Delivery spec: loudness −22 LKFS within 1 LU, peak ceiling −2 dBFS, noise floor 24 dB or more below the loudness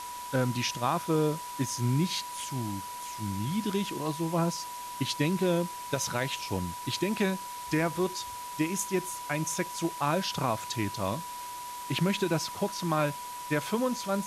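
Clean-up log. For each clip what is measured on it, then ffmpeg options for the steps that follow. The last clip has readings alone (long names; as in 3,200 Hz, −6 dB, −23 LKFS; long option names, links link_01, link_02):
interfering tone 980 Hz; level of the tone −38 dBFS; background noise floor −40 dBFS; target noise floor −55 dBFS; integrated loudness −31.0 LKFS; sample peak −15.5 dBFS; target loudness −22.0 LKFS
→ -af "bandreject=frequency=980:width=30"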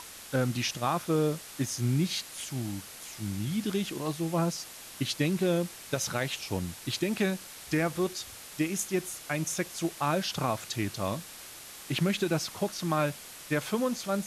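interfering tone none found; background noise floor −46 dBFS; target noise floor −55 dBFS
→ -af "afftdn=noise_reduction=9:noise_floor=-46"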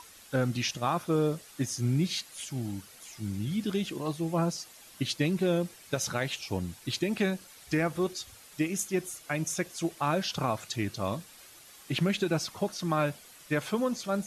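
background noise floor −53 dBFS; target noise floor −56 dBFS
→ -af "afftdn=noise_reduction=6:noise_floor=-53"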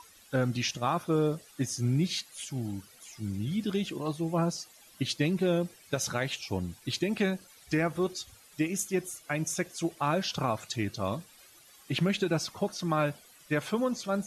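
background noise floor −57 dBFS; integrated loudness −31.5 LKFS; sample peak −16.0 dBFS; target loudness −22.0 LKFS
→ -af "volume=9.5dB"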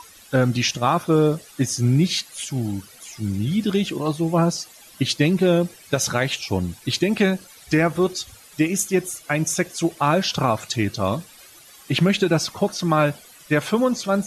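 integrated loudness −22.0 LKFS; sample peak −6.5 dBFS; background noise floor −47 dBFS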